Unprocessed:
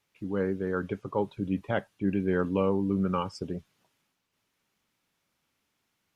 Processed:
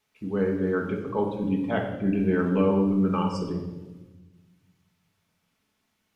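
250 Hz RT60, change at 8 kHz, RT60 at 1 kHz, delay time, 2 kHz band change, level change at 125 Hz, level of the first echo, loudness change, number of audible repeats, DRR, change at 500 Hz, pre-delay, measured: 1.7 s, no reading, 1.0 s, no echo, +3.0 dB, +4.5 dB, no echo, +4.5 dB, no echo, 0.5 dB, +3.5 dB, 5 ms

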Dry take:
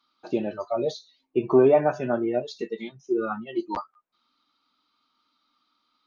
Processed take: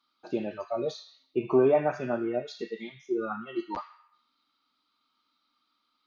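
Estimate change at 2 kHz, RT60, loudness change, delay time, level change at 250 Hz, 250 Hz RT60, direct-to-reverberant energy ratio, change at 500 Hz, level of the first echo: -2.5 dB, 0.75 s, -4.5 dB, no echo, -4.5 dB, 0.80 s, 4.0 dB, -4.5 dB, no echo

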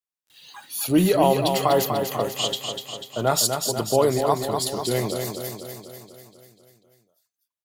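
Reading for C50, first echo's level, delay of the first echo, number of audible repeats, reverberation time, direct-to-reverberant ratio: no reverb, -6.0 dB, 246 ms, 7, no reverb, no reverb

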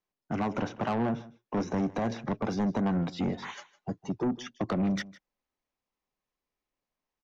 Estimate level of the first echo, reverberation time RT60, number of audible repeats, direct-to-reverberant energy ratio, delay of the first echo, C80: -19.5 dB, no reverb, 1, no reverb, 157 ms, no reverb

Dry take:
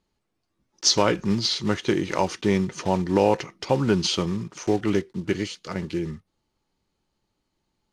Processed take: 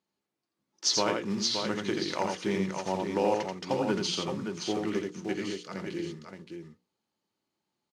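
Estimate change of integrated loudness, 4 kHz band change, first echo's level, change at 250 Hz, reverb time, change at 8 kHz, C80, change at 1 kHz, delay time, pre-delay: -6.5 dB, -5.5 dB, -4.0 dB, -7.5 dB, no reverb, -5.5 dB, no reverb, -5.5 dB, 84 ms, no reverb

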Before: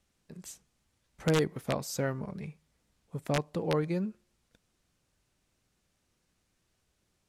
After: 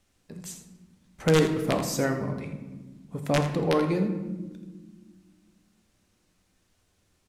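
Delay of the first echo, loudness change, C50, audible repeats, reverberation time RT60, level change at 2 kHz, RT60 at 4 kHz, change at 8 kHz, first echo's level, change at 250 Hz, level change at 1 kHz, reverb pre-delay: 82 ms, +6.0 dB, 7.5 dB, 1, 1.4 s, +6.0 dB, 0.75 s, +6.0 dB, -11.0 dB, +7.5 dB, +6.5 dB, 3 ms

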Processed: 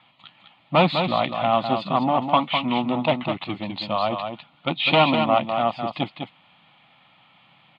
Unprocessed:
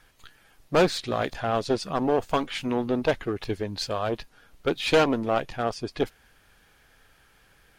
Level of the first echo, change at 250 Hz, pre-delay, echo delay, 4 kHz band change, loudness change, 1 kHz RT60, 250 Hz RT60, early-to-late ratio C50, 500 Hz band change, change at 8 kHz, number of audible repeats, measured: -6.5 dB, +3.5 dB, no reverb, 203 ms, +6.5 dB, +4.5 dB, no reverb, no reverb, no reverb, +1.5 dB, under -20 dB, 1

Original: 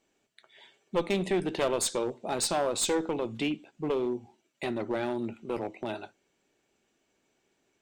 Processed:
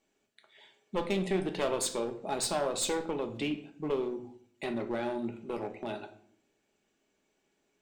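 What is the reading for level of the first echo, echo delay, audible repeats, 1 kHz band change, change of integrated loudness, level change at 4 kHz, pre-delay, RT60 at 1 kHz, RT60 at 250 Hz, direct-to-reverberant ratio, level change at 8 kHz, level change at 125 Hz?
no echo, no echo, no echo, -2.5 dB, -3.0 dB, -3.0 dB, 3 ms, 0.55 s, 0.80 s, 6.0 dB, -3.0 dB, -1.5 dB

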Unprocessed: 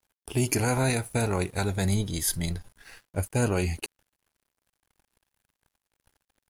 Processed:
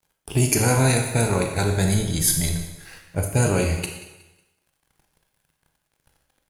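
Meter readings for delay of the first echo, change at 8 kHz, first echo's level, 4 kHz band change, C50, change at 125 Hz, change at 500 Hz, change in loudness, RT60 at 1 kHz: 183 ms, +8.5 dB, -17.5 dB, +6.5 dB, 5.5 dB, +6.5 dB, +5.5 dB, +6.5 dB, 1.1 s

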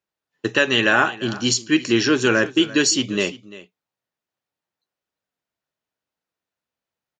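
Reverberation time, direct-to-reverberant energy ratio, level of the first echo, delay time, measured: no reverb, no reverb, -18.0 dB, 345 ms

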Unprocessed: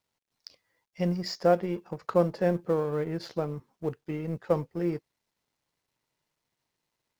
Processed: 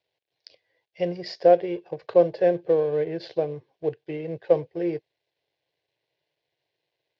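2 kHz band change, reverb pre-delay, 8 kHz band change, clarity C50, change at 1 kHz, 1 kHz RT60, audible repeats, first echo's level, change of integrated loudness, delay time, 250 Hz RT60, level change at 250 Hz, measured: +1.5 dB, no reverb, no reading, no reverb, +3.5 dB, no reverb, no echo, no echo, +5.0 dB, no echo, no reverb, 0.0 dB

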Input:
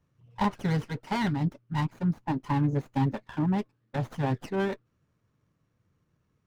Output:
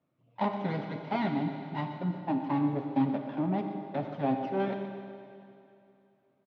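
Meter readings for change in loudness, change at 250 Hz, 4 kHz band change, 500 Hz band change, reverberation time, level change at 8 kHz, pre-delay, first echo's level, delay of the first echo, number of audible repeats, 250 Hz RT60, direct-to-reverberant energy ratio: -2.5 dB, -1.0 dB, -5.5 dB, +0.5 dB, 2.7 s, no reading, 11 ms, -13.0 dB, 122 ms, 1, 2.7 s, 4.0 dB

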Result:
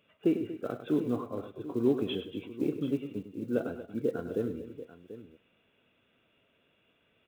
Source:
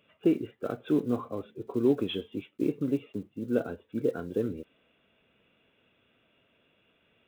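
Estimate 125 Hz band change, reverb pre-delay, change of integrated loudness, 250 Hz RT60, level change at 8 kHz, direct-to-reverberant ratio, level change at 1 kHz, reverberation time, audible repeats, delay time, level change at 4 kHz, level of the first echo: -1.5 dB, no reverb, -2.0 dB, no reverb, no reading, no reverb, -2.0 dB, no reverb, 3, 101 ms, -2.0 dB, -10.5 dB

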